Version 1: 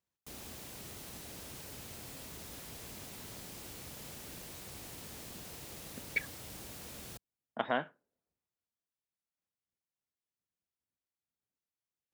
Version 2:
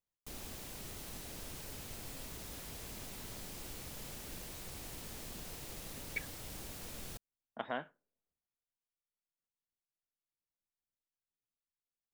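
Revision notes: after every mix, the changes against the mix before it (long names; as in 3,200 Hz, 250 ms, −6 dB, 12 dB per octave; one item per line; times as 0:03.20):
speech −6.5 dB
master: remove high-pass filter 63 Hz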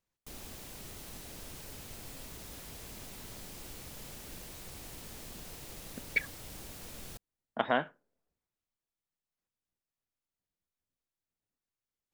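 speech +10.0 dB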